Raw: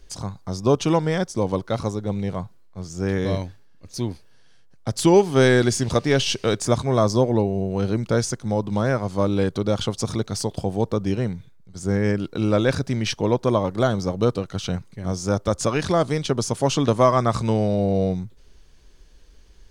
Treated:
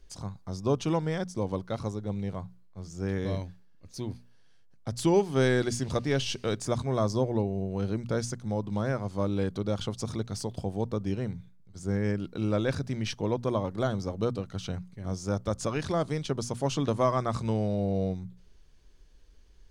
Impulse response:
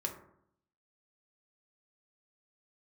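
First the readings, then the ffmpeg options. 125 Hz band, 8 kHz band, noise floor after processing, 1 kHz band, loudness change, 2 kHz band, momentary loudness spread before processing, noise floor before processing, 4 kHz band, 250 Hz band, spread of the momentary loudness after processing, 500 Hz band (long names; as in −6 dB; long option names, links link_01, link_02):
−7.0 dB, −10.0 dB, −55 dBFS, −9.0 dB, −8.0 dB, −9.0 dB, 12 LU, −49 dBFS, −9.5 dB, −8.0 dB, 12 LU, −8.5 dB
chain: -af "bass=frequency=250:gain=3,treble=frequency=4000:gain=-1,bandreject=frequency=60:width_type=h:width=6,bandreject=frequency=120:width_type=h:width=6,bandreject=frequency=180:width_type=h:width=6,bandreject=frequency=240:width_type=h:width=6,volume=-9dB"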